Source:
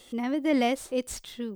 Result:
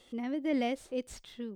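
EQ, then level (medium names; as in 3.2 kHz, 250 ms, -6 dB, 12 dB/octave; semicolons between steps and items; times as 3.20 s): dynamic bell 1.1 kHz, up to -6 dB, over -45 dBFS, Q 1.5; treble shelf 6.5 kHz -11.5 dB; -5.5 dB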